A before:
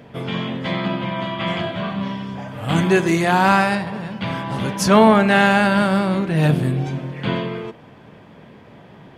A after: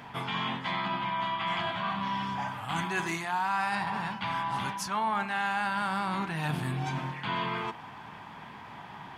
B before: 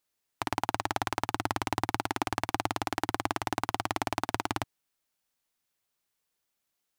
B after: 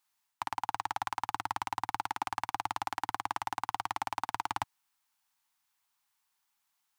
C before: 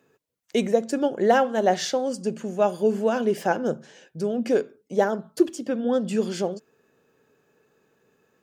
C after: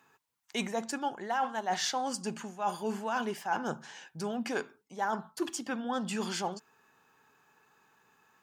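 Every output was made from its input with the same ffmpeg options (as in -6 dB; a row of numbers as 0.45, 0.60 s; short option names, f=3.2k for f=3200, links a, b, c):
-af "lowshelf=f=690:t=q:w=3:g=-8,areverse,acompressor=threshold=-31dB:ratio=6,areverse,volume=2dB"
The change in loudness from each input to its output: -12.5, -3.5, -10.0 LU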